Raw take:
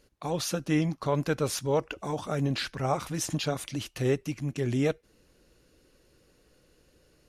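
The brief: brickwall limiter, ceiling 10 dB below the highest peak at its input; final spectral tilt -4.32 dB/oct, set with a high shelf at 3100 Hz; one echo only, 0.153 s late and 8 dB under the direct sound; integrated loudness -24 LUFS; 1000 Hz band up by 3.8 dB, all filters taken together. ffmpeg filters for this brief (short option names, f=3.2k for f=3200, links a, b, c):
-af "equalizer=f=1k:t=o:g=4,highshelf=f=3.1k:g=8,alimiter=limit=-22dB:level=0:latency=1,aecho=1:1:153:0.398,volume=7.5dB"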